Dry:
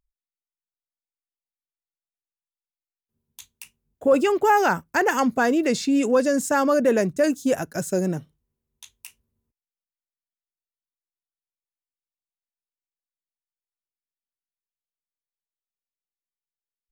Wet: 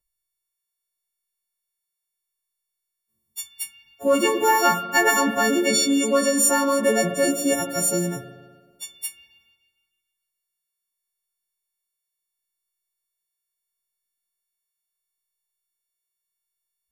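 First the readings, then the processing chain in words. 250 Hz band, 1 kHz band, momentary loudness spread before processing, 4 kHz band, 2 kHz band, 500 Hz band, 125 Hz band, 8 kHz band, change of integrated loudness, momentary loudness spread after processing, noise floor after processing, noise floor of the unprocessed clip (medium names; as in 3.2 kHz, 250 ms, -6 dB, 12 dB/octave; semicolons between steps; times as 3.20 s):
-1.0 dB, +0.5 dB, 7 LU, +9.5 dB, +3.0 dB, -1.0 dB, -1.0 dB, +11.5 dB, +1.5 dB, 16 LU, -83 dBFS, under -85 dBFS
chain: partials quantised in pitch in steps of 4 st; spring tank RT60 1.6 s, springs 31/39 ms, chirp 60 ms, DRR 5 dB; trim -1 dB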